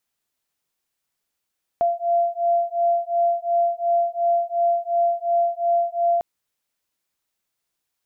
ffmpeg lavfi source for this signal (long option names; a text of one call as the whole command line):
ffmpeg -f lavfi -i "aevalsrc='0.0891*(sin(2*PI*686*t)+sin(2*PI*688.8*t))':duration=4.4:sample_rate=44100" out.wav